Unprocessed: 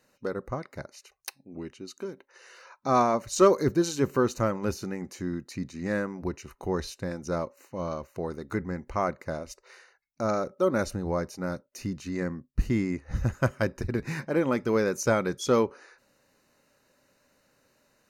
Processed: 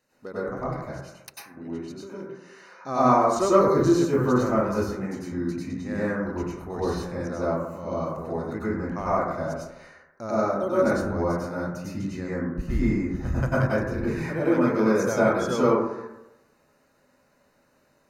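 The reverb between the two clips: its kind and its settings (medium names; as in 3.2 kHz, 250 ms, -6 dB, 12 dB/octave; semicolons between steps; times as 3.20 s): plate-style reverb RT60 0.93 s, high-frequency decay 0.25×, pre-delay 85 ms, DRR -9.5 dB; trim -7 dB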